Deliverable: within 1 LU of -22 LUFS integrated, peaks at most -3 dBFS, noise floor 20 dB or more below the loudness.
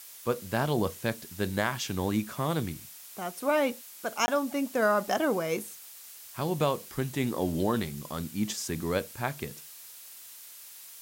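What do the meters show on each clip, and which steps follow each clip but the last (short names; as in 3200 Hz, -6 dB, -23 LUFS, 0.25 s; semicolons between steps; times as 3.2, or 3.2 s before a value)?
dropouts 1; longest dropout 20 ms; noise floor -48 dBFS; noise floor target -51 dBFS; loudness -30.5 LUFS; peak -13.0 dBFS; loudness target -22.0 LUFS
-> interpolate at 4.26, 20 ms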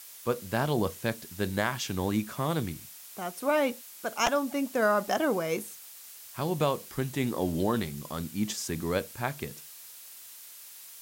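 dropouts 0; noise floor -48 dBFS; noise floor target -51 dBFS
-> denoiser 6 dB, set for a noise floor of -48 dBFS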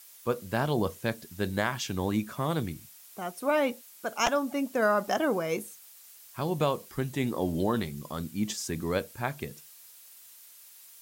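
noise floor -53 dBFS; loudness -30.5 LUFS; peak -12.0 dBFS; loudness target -22.0 LUFS
-> gain +8.5 dB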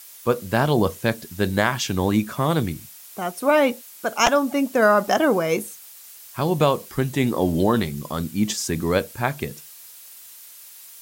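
loudness -22.0 LUFS; peak -3.5 dBFS; noise floor -44 dBFS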